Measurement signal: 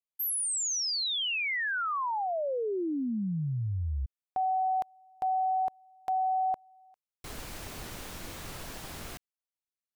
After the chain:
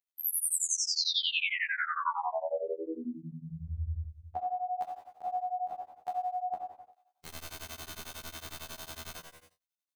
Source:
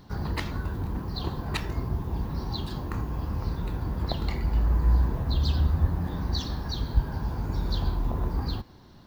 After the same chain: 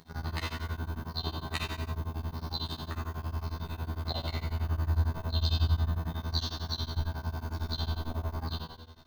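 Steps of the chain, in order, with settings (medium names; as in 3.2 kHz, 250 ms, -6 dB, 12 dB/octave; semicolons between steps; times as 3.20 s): bass shelf 94 Hz -8.5 dB; robot voice 81.1 Hz; on a send: flutter echo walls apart 3.9 m, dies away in 0.2 s; on the sum: gated-style reverb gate 370 ms falling, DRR -1.5 dB; tremolo of two beating tones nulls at 11 Hz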